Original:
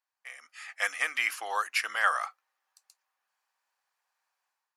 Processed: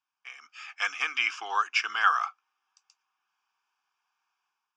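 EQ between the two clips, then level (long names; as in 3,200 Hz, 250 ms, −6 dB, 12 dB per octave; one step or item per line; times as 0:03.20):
loudspeaker in its box 150–5,700 Hz, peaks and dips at 390 Hz +5 dB, 680 Hz +4 dB, 2,100 Hz +6 dB, 4,700 Hz +7 dB
phaser with its sweep stopped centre 2,900 Hz, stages 8
+4.0 dB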